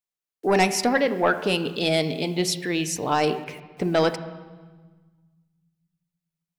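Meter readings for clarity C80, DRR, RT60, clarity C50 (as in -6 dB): 14.0 dB, 9.0 dB, 1.4 s, 13.0 dB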